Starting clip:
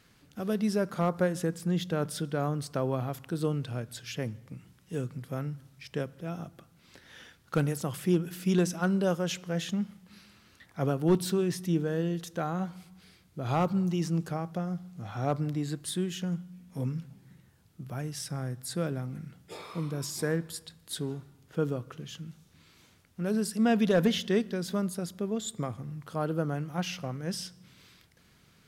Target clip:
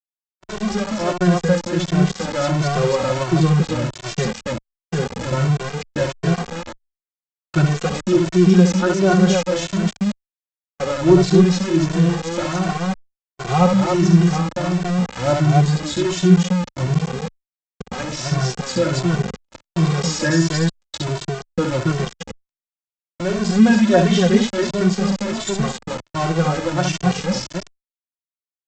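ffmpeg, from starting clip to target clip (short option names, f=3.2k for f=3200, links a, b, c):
-filter_complex "[0:a]equalizer=f=2.8k:t=o:w=0.4:g=-3.5,aecho=1:1:5.5:0.93,asplit=2[a][b];[b]aecho=0:1:67.06|277:0.501|0.708[c];[a][c]amix=inputs=2:normalize=0,dynaudnorm=f=100:g=21:m=11dB,aresample=16000,aeval=exprs='val(0)*gte(abs(val(0)),0.0891)':c=same,aresample=44100,agate=range=-48dB:threshold=-31dB:ratio=16:detection=peak,asplit=2[d][e];[e]adelay=2.1,afreqshift=1.4[f];[d][f]amix=inputs=2:normalize=1,volume=2.5dB"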